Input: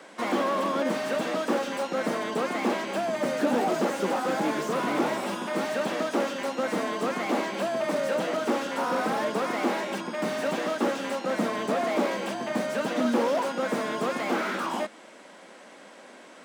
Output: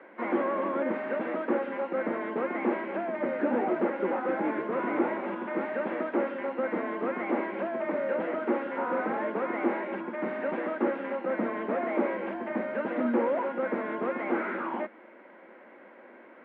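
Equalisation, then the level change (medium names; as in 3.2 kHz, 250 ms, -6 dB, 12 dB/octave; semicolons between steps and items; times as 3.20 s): distance through air 100 m; cabinet simulation 180–2400 Hz, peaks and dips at 230 Hz +5 dB, 350 Hz +9 dB, 530 Hz +5 dB, 920 Hz +4 dB, 1.5 kHz +4 dB, 2.1 kHz +6 dB; -6.5 dB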